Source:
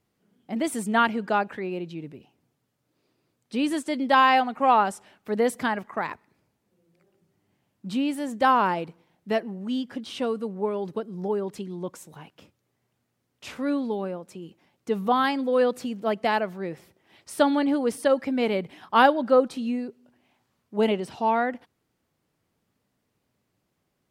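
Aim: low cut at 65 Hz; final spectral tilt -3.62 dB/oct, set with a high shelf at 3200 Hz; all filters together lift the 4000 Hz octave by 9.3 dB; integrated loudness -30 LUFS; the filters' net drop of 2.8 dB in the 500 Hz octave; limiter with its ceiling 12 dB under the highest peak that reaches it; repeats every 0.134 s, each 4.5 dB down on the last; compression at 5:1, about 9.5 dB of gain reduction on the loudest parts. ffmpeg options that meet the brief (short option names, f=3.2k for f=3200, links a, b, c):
-af "highpass=65,equalizer=f=500:t=o:g=-3.5,highshelf=f=3.2k:g=6.5,equalizer=f=4k:t=o:g=8.5,acompressor=threshold=-22dB:ratio=5,alimiter=limit=-22.5dB:level=0:latency=1,aecho=1:1:134|268|402|536|670|804|938|1072|1206:0.596|0.357|0.214|0.129|0.0772|0.0463|0.0278|0.0167|0.01,volume=1.5dB"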